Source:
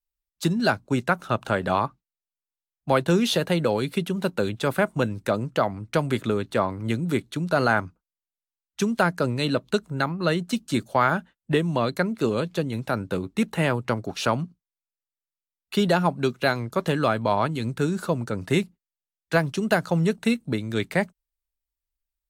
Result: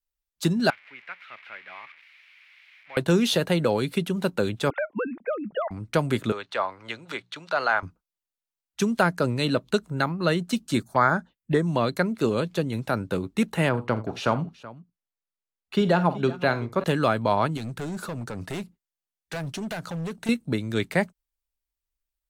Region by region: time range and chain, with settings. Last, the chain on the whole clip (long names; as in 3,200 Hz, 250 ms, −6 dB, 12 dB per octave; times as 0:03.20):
0:00.70–0:02.97: spike at every zero crossing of −13 dBFS + resonant band-pass 2,200 Hz, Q 5 + high-frequency loss of the air 360 metres
0:04.70–0:05.71: three sine waves on the formant tracks + downward compressor, threshold −23 dBFS + one half of a high-frequency compander decoder only
0:06.32–0:07.83: three-way crossover with the lows and the highs turned down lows −21 dB, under 560 Hz, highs −21 dB, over 5,600 Hz + mains-hum notches 60/120/180 Hz + one half of a high-frequency compander encoder only
0:10.82–0:11.67: dynamic equaliser 1,800 Hz, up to +6 dB, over −35 dBFS, Q 1.2 + phaser swept by the level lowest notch 490 Hz, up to 2,800 Hz, full sweep at −19 dBFS
0:13.69–0:16.84: low-pass filter 2,500 Hz 6 dB per octave + multi-tap delay 46/83/377 ms −14.5/−18.5/−18 dB
0:17.57–0:20.29: downward compressor 2 to 1, threshold −28 dBFS + hard clipping −28.5 dBFS
whole clip: no processing